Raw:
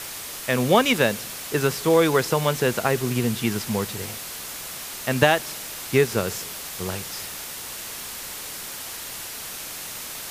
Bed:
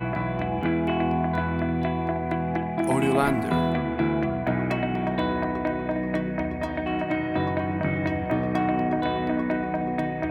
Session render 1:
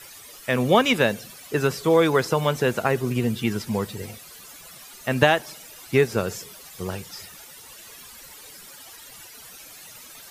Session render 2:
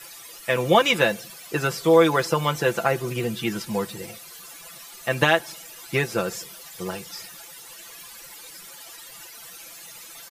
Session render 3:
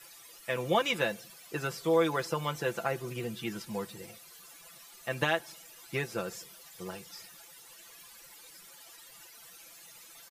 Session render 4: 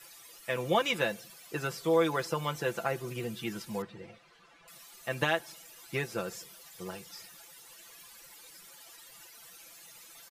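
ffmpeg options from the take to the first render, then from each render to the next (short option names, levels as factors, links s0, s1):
-af "afftdn=nr=14:nf=-35"
-af "lowshelf=f=250:g=-6.5,aecho=1:1:5.9:0.65"
-af "volume=0.316"
-filter_complex "[0:a]asettb=1/sr,asplit=3[s0][s1][s2];[s0]atrim=end=3.824[s3];[s1]atrim=start=3.82:end=4.68,asetpts=PTS-STARTPTS,afade=t=in:d=0.004:c=qsin,afade=t=out:st=0.856:d=0.004:c=qsin,lowpass=2600[s4];[s2]atrim=start=4.676[s5];[s3][s4]acrossfade=d=0.004:c1=hsin:c2=qsin[s6];[s6][s5]acrossfade=d=0.004:c1=qsin:c2=hsin"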